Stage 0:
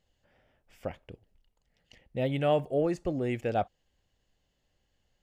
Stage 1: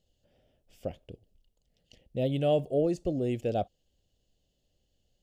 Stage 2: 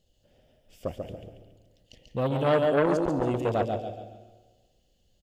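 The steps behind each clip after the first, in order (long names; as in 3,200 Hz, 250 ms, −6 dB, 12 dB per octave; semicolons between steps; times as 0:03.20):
flat-topped bell 1,400 Hz −13 dB; level +1 dB
repeating echo 139 ms, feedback 39%, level −5 dB; dense smooth reverb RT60 1.3 s, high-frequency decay 0.85×, pre-delay 110 ms, DRR 11 dB; saturating transformer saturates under 840 Hz; level +4.5 dB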